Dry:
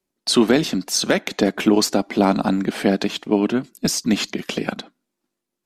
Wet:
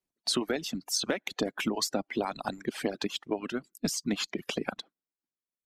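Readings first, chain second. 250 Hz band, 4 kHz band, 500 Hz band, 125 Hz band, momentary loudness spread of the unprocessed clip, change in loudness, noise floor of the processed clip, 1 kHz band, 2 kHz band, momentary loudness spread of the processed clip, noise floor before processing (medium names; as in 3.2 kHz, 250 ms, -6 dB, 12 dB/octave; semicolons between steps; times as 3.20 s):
-15.0 dB, -9.0 dB, -13.0 dB, -15.0 dB, 8 LU, -12.0 dB, under -85 dBFS, -11.5 dB, -10.0 dB, 6 LU, -82 dBFS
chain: reverb removal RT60 1.3 s; harmonic-percussive split harmonic -16 dB; compression 5:1, threshold -20 dBFS, peak gain reduction 8 dB; trim -5.5 dB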